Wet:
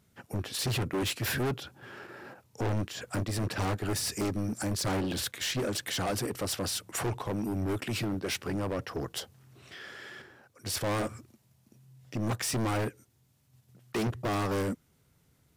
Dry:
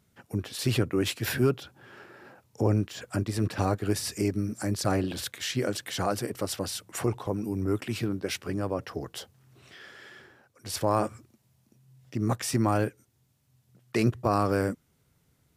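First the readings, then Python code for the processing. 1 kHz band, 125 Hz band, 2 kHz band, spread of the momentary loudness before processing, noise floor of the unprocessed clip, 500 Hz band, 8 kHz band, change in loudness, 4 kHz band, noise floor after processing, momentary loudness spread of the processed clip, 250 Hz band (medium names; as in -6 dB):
-4.0 dB, -3.5 dB, 0.0 dB, 13 LU, -69 dBFS, -4.5 dB, +1.0 dB, -3.0 dB, +1.0 dB, -68 dBFS, 15 LU, -4.0 dB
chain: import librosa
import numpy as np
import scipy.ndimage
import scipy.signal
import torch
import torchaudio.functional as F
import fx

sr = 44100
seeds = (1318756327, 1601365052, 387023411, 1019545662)

p1 = fx.level_steps(x, sr, step_db=13)
p2 = x + (p1 * librosa.db_to_amplitude(0.0))
p3 = np.clip(p2, -10.0 ** (-26.0 / 20.0), 10.0 ** (-26.0 / 20.0))
y = p3 * librosa.db_to_amplitude(-1.5)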